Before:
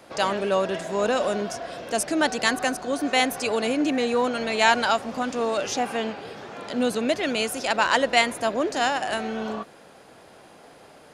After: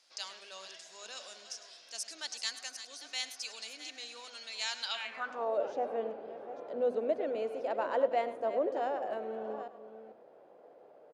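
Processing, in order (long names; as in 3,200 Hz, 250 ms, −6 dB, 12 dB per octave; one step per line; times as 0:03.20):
delay that plays each chunk backwards 440 ms, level −11.5 dB
mains-hum notches 50/100/150/200/250 Hz
slap from a distant wall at 18 metres, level −14 dB
band-pass filter sweep 5,200 Hz → 520 Hz, 0:04.80–0:05.58
level −3.5 dB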